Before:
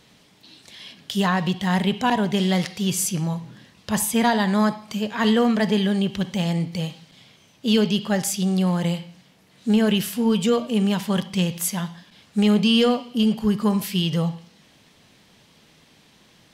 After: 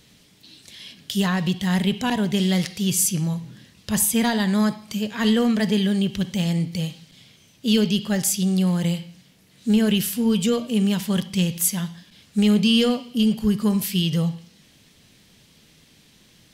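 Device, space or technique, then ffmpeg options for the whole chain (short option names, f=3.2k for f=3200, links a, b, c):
smiley-face EQ: -af "lowshelf=f=89:g=6.5,equalizer=f=880:t=o:w=1.5:g=-7,highshelf=f=7k:g=6.5"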